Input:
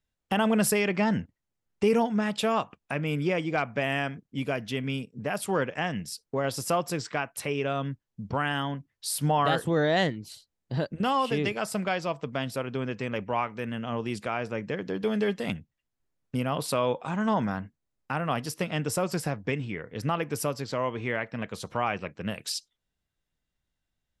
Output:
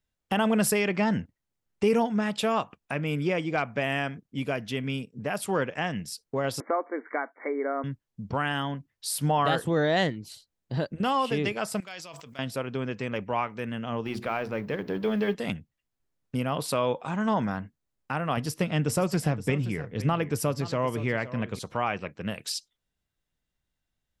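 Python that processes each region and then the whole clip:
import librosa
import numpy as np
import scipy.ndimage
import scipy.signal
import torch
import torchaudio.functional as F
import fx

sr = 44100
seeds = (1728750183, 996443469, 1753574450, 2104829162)

y = fx.chain(x, sr, fx.brickwall_bandpass(low_hz=230.0, high_hz=2300.0),
    fx.band_squash(depth_pct=40), at=(6.6, 7.84))
y = fx.chain(y, sr, fx.pre_emphasis(coefficient=0.9),
    fx.sustainer(db_per_s=25.0), at=(11.8, 12.39))
y = fx.chain(y, sr, fx.law_mismatch(coded='mu'),
    fx.peak_eq(hz=7900.0, db=-12.5, octaves=0.83),
    fx.hum_notches(base_hz=60, count=7), at=(14.05, 15.35))
y = fx.chain(y, sr, fx.low_shelf(hz=250.0, db=7.0),
    fx.echo_single(ms=520, db=-15.0), at=(18.37, 21.59))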